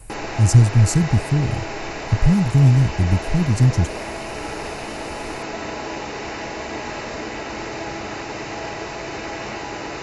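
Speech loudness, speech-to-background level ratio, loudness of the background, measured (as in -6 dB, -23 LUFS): -18.0 LUFS, 11.5 dB, -29.5 LUFS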